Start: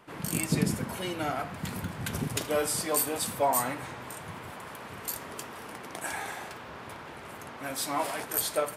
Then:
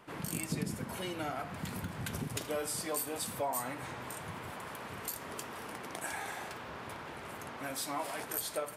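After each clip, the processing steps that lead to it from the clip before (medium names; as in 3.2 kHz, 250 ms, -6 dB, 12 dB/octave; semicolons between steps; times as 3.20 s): compression 2:1, threshold -37 dBFS, peak gain reduction 10 dB; trim -1 dB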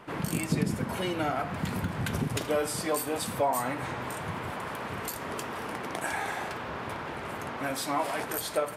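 treble shelf 4.4 kHz -8 dB; trim +8.5 dB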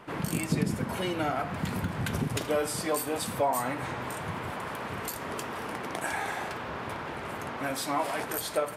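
no audible change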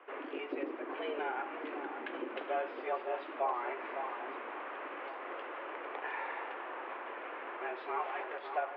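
mistuned SSB +110 Hz 210–2800 Hz; echo whose repeats swap between lows and highs 557 ms, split 1.4 kHz, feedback 55%, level -7 dB; trim -7 dB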